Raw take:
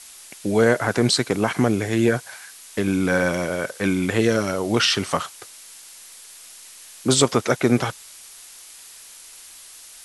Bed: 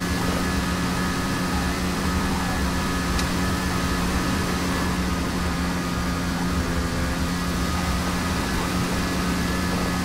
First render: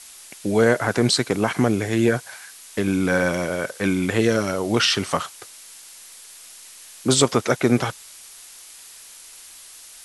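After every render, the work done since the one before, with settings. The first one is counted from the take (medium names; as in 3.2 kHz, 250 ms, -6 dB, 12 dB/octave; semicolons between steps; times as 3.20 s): no audible change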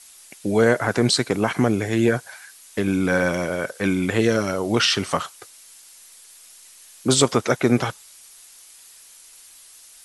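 noise reduction 6 dB, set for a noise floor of -44 dBFS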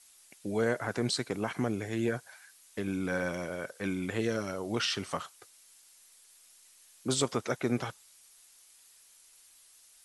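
trim -12 dB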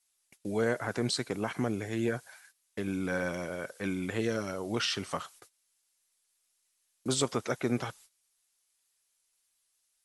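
gate -54 dBFS, range -17 dB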